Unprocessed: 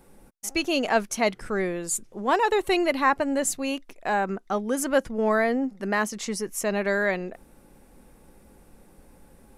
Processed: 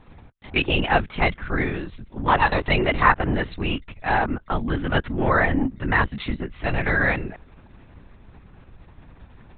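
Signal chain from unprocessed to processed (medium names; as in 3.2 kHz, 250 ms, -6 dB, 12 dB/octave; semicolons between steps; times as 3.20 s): peaking EQ 500 Hz -13.5 dB 0.78 oct; LPC vocoder at 8 kHz whisper; trim +7 dB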